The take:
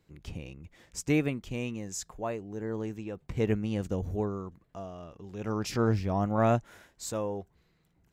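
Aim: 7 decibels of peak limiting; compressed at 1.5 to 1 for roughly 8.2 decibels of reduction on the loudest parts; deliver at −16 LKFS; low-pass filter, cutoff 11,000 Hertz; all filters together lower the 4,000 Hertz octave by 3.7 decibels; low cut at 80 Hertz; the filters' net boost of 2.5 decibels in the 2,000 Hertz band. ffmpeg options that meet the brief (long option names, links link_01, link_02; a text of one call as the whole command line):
ffmpeg -i in.wav -af "highpass=80,lowpass=11000,equalizer=frequency=2000:width_type=o:gain=5.5,equalizer=frequency=4000:width_type=o:gain=-7.5,acompressor=threshold=-44dB:ratio=1.5,volume=25dB,alimiter=limit=-3.5dB:level=0:latency=1" out.wav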